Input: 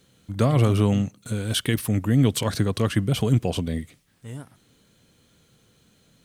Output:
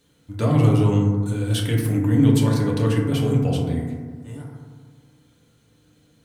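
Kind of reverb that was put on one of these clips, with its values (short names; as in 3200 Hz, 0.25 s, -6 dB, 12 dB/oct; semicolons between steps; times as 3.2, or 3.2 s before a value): FDN reverb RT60 1.6 s, low-frequency decay 1.25×, high-frequency decay 0.25×, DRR -2.5 dB; gain -4.5 dB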